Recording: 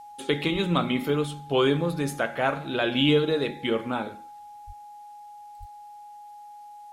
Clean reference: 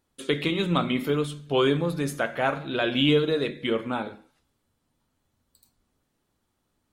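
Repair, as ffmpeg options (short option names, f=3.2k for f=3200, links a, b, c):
-filter_complex "[0:a]bandreject=f=830:w=30,asplit=3[a][b][c];[a]afade=t=out:st=0.52:d=0.02[d];[b]highpass=f=140:w=0.5412,highpass=f=140:w=1.3066,afade=t=in:st=0.52:d=0.02,afade=t=out:st=0.64:d=0.02[e];[c]afade=t=in:st=0.64:d=0.02[f];[d][e][f]amix=inputs=3:normalize=0,asplit=3[g][h][i];[g]afade=t=out:st=4.66:d=0.02[j];[h]highpass=f=140:w=0.5412,highpass=f=140:w=1.3066,afade=t=in:st=4.66:d=0.02,afade=t=out:st=4.78:d=0.02[k];[i]afade=t=in:st=4.78:d=0.02[l];[j][k][l]amix=inputs=3:normalize=0,asplit=3[m][n][o];[m]afade=t=out:st=5.59:d=0.02[p];[n]highpass=f=140:w=0.5412,highpass=f=140:w=1.3066,afade=t=in:st=5.59:d=0.02,afade=t=out:st=5.71:d=0.02[q];[o]afade=t=in:st=5.71:d=0.02[r];[p][q][r]amix=inputs=3:normalize=0,agate=range=-21dB:threshold=-37dB,asetnsamples=n=441:p=0,asendcmd='4.84 volume volume 8.5dB',volume=0dB"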